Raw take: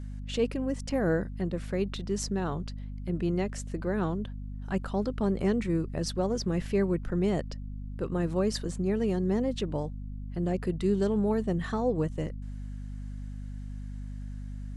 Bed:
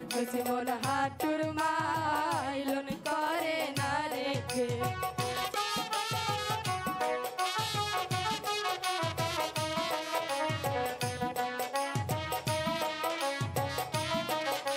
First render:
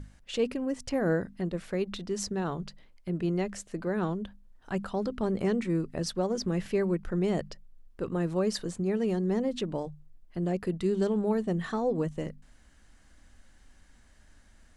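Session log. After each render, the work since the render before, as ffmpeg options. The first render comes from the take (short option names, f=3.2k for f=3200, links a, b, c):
-af "bandreject=f=50:t=h:w=6,bandreject=f=100:t=h:w=6,bandreject=f=150:t=h:w=6,bandreject=f=200:t=h:w=6,bandreject=f=250:t=h:w=6"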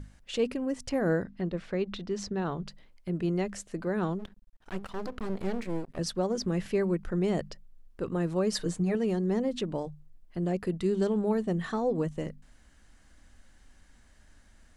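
-filter_complex "[0:a]asettb=1/sr,asplit=3[a][b][c];[a]atrim=end=1.234[d];[b]atrim=start=1.23:end=2.66,asetpts=PTS-STARTPTS,afade=t=in:d=0.004:c=qsin,afade=t=out:st=1.426:d=0.004:c=qsin,lowpass=4.9k[e];[c]atrim=start=2.656[f];[d][e]acrossfade=d=0.004:c1=hsin:c2=qsin[g];[g][f]acrossfade=d=0.004:c1=qsin:c2=hsin,asplit=3[h][i][j];[h]afade=t=out:st=4.18:d=0.02[k];[i]aeval=exprs='max(val(0),0)':c=same,afade=t=in:st=4.18:d=0.02,afade=t=out:st=5.97:d=0.02[l];[j]afade=t=in:st=5.97:d=0.02[m];[k][l][m]amix=inputs=3:normalize=0,asettb=1/sr,asplit=3[n][o][p];[n]atrim=end=8.524[q];[o]atrim=start=8.52:end=8.95,asetpts=PTS-STARTPTS,afade=t=in:d=0.004:c=qsin,afade=t=out:st=0.426:d=0.004:c=qsin,aecho=1:1:6.5:0.85,atrim=end_sample=18963[r];[p]atrim=start=8.946[s];[q][r]acrossfade=d=0.004:c1=hsin:c2=qsin[t];[t][s]acrossfade=d=0.004:c1=qsin:c2=hsin"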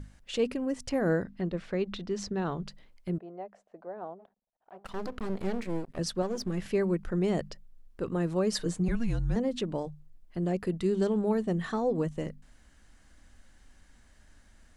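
-filter_complex "[0:a]asettb=1/sr,asplit=3[a][b][c];[a]atrim=end=3.184[d];[b]atrim=start=3.18:end=4.85,asetpts=PTS-STARTPTS,afade=t=in:d=0.004:c=qsin,afade=t=out:st=1.666:d=0.004:c=qsin,bandpass=f=700:t=q:w=3.6[e];[c]atrim=start=4.846[f];[d][e]acrossfade=d=0.004:c1=hsin:c2=qsin[g];[g][f]acrossfade=d=0.004:c1=qsin:c2=hsin,asettb=1/sr,asplit=3[h][i][j];[h]atrim=end=6.224[k];[i]atrim=start=6.22:end=6.62,asetpts=PTS-STARTPTS,afade=t=in:d=0.004:c=qsin,afade=t=out:st=0.396:d=0.004:c=qsin,aeval=exprs='if(lt(val(0),0),0.447*val(0),val(0))':c=same[l];[j]atrim=start=6.616[m];[k][l]acrossfade=d=0.004:c1=hsin:c2=qsin[n];[n][m]acrossfade=d=0.004:c1=qsin:c2=hsin,asettb=1/sr,asplit=3[o][p][q];[o]atrim=end=8.884[r];[p]atrim=start=8.88:end=9.36,asetpts=PTS-STARTPTS,afade=t=in:d=0.004:c=qsin,afade=t=out:st=0.476:d=0.004:c=qsin,afreqshift=-230[s];[q]atrim=start=9.356[t];[r][s]acrossfade=d=0.004:c1=hsin:c2=qsin[u];[u][t]acrossfade=d=0.004:c1=qsin:c2=hsin"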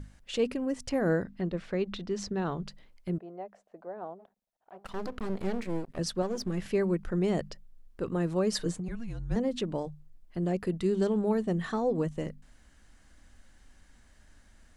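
-filter_complex "[0:a]asplit=3[a][b][c];[a]afade=t=out:st=8.71:d=0.02[d];[b]acompressor=threshold=-32dB:ratio=12:attack=3.2:release=140:knee=1:detection=peak,afade=t=in:st=8.71:d=0.02,afade=t=out:st=9.3:d=0.02[e];[c]afade=t=in:st=9.3:d=0.02[f];[d][e][f]amix=inputs=3:normalize=0"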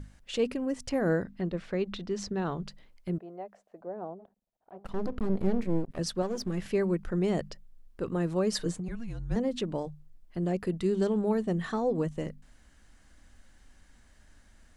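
-filter_complex "[0:a]asettb=1/sr,asplit=3[a][b][c];[a]atrim=end=3.814[d];[b]atrim=start=3.81:end=5.91,asetpts=PTS-STARTPTS,afade=t=in:d=0.004:c=qsin,afade=t=out:st=2.096:d=0.004:c=qsin,tiltshelf=f=740:g=6.5[e];[c]atrim=start=5.906[f];[d][e]acrossfade=d=0.004:c1=hsin:c2=qsin[g];[g][f]acrossfade=d=0.004:c1=qsin:c2=hsin"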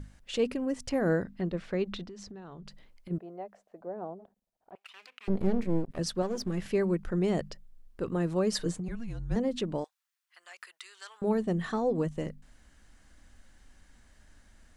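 -filter_complex "[0:a]asplit=3[a][b][c];[a]afade=t=out:st=2.03:d=0.02[d];[b]acompressor=threshold=-42dB:ratio=8:attack=3.2:release=140:knee=1:detection=peak,afade=t=in:st=2.03:d=0.02,afade=t=out:st=3.1:d=0.02[e];[c]afade=t=in:st=3.1:d=0.02[f];[d][e][f]amix=inputs=3:normalize=0,asettb=1/sr,asplit=3[g][h][i];[g]atrim=end=4.754[j];[h]atrim=start=4.75:end=5.28,asetpts=PTS-STARTPTS,afade=t=in:d=0.004:c=qsin,afade=t=out:st=0.526:d=0.004:c=qsin,highpass=f=2.5k:t=q:w=4.5[k];[i]atrim=start=5.276[l];[j][k]acrossfade=d=0.004:c1=hsin:c2=qsin[m];[m][l]acrossfade=d=0.004:c1=qsin:c2=hsin,asettb=1/sr,asplit=3[n][o][p];[n]atrim=end=9.844[q];[o]atrim=start=9.84:end=11.22,asetpts=PTS-STARTPTS,afade=t=in:d=0.004:c=qsin,afade=t=out:st=1.376:d=0.004:c=qsin,highpass=f=1.2k:w=0.5412,highpass=f=1.2k:w=1.3066[r];[p]atrim=start=11.216[s];[q][r]acrossfade=d=0.004:c1=hsin:c2=qsin[t];[t][s]acrossfade=d=0.004:c1=qsin:c2=hsin"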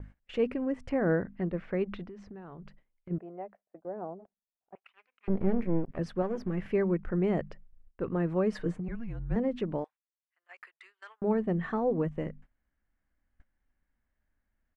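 -af "agate=range=-21dB:threshold=-49dB:ratio=16:detection=peak,firequalizer=gain_entry='entry(2200,0);entry(3900,-16);entry(7300,-22)':delay=0.05:min_phase=1"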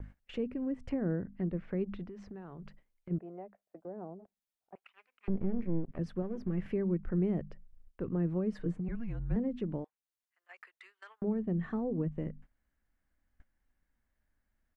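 -filter_complex "[0:a]alimiter=limit=-19.5dB:level=0:latency=1:release=455,acrossover=split=360[a][b];[b]acompressor=threshold=-50dB:ratio=2.5[c];[a][c]amix=inputs=2:normalize=0"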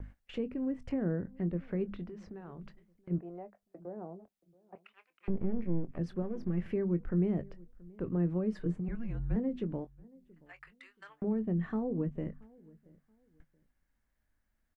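-filter_complex "[0:a]asplit=2[a][b];[b]adelay=23,volume=-13dB[c];[a][c]amix=inputs=2:normalize=0,asplit=2[d][e];[e]adelay=678,lowpass=f=1.3k:p=1,volume=-24dB,asplit=2[f][g];[g]adelay=678,lowpass=f=1.3k:p=1,volume=0.27[h];[d][f][h]amix=inputs=3:normalize=0"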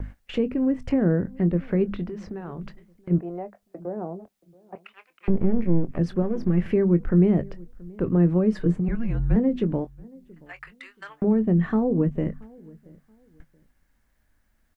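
-af "volume=11.5dB"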